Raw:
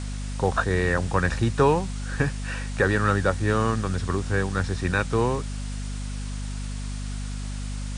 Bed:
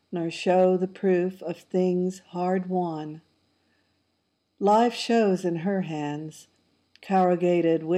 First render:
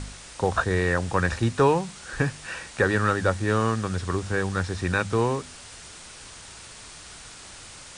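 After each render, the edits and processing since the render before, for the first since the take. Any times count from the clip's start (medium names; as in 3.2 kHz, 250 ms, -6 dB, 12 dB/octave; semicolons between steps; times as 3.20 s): de-hum 50 Hz, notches 5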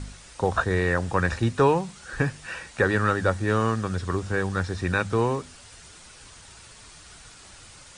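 noise reduction 6 dB, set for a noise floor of -44 dBFS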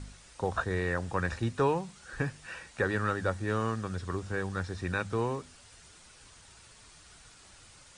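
trim -7.5 dB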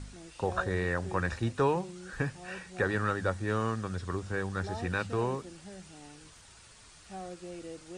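add bed -21.5 dB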